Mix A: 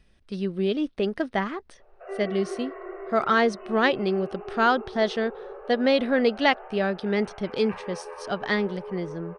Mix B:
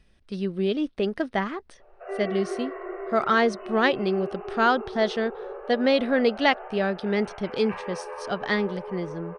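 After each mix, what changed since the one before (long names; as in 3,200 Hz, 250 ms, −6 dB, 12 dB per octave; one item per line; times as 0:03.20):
background: send +9.0 dB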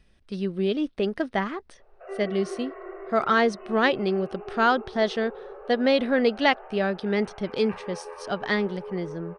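reverb: off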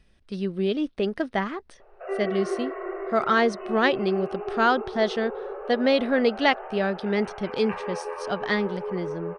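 background +6.5 dB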